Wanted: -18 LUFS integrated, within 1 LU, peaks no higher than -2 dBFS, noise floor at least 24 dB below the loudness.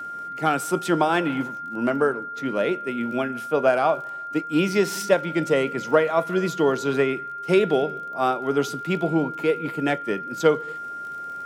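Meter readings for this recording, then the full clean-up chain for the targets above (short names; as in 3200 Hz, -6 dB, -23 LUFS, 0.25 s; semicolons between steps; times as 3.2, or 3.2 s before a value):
ticks 25/s; steady tone 1400 Hz; tone level -31 dBFS; loudness -23.5 LUFS; peak -5.0 dBFS; loudness target -18.0 LUFS
-> de-click; notch 1400 Hz, Q 30; gain +5.5 dB; limiter -2 dBFS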